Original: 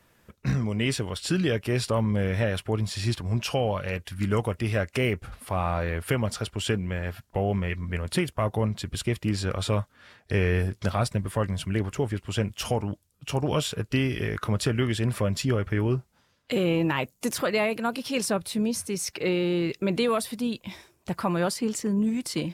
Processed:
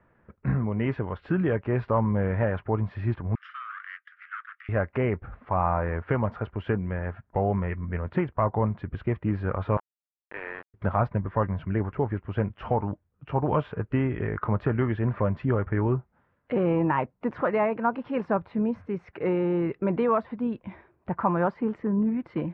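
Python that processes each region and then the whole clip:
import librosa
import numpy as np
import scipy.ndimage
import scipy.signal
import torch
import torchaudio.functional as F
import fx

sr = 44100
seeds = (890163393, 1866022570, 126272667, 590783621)

y = fx.chain(x, sr, fx.lower_of_two(delay_ms=0.58),
    fx.steep_highpass(hz=1200.0, slope=96), at=(3.35, 4.69))
y = fx.chain(y, sr, fx.highpass(hz=890.0, slope=12),
    fx.sample_gate(floor_db=-33.0), at=(9.77, 10.74))
y = fx.dynamic_eq(y, sr, hz=930.0, q=2.4, threshold_db=-45.0, ratio=4.0, max_db=7)
y = scipy.signal.sosfilt(scipy.signal.butter(4, 1800.0, 'lowpass', fs=sr, output='sos'), y)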